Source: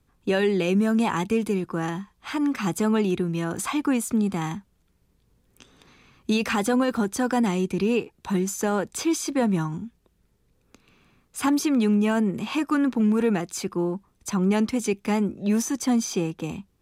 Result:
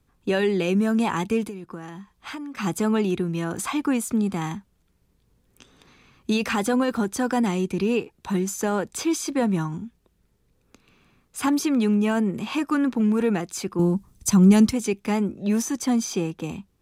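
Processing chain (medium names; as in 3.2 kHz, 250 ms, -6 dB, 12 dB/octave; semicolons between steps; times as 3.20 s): 1.43–2.57 s: compression 16:1, threshold -32 dBFS, peak gain reduction 12.5 dB; 13.79–14.73 s: tone controls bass +12 dB, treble +11 dB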